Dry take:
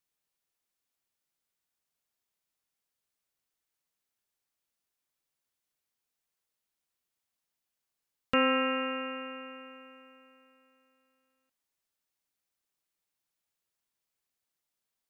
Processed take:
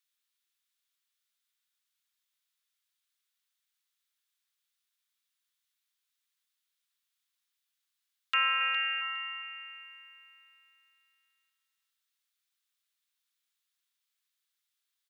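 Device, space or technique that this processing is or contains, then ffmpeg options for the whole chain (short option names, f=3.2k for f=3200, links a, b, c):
headphones lying on a table: -filter_complex "[0:a]asettb=1/sr,asplit=3[a][b][c];[a]atrim=end=8.584[d];[b]atrim=start=8.58:end=9.01,asetpts=PTS-STARTPTS,afade=t=in:d=0.004:c=qsin,afade=t=out:st=0.426:d=0.004:c=qsin,asplit=2[e][f];[f]adelay=27,volume=-5dB[g];[e][g]amix=inputs=2:normalize=0,atrim=end_sample=18963[h];[c]atrim=start=9.006[i];[d][h]acrossfade=d=0.004:c1=hsin:c2=qsin[j];[j][i]acrossfade=d=0.004:c1=qsin:c2=hsin,highpass=f=1.2k:w=0.5412,highpass=f=1.2k:w=1.3066,equalizer=f=3.6k:t=o:w=0.49:g=6.5,asplit=2[k][l];[l]adelay=411,lowpass=f=3.4k:p=1,volume=-10dB,asplit=2[m][n];[n]adelay=411,lowpass=f=3.4k:p=1,volume=0.24,asplit=2[o][p];[p]adelay=411,lowpass=f=3.4k:p=1,volume=0.24[q];[k][m][o][q]amix=inputs=4:normalize=0,volume=1.5dB"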